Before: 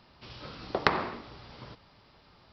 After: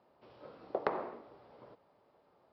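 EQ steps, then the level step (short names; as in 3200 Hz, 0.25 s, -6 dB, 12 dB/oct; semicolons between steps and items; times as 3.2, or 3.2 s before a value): band-pass 540 Hz, Q 1.5; -2.0 dB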